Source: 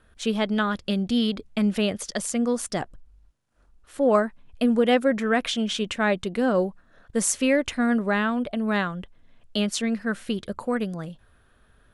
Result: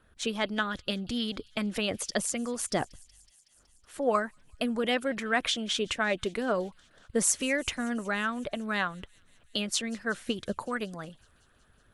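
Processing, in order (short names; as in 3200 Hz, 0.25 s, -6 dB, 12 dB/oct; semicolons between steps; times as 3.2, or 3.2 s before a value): harmonic-percussive split harmonic -10 dB; thin delay 0.186 s, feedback 76%, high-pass 4000 Hz, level -21.5 dB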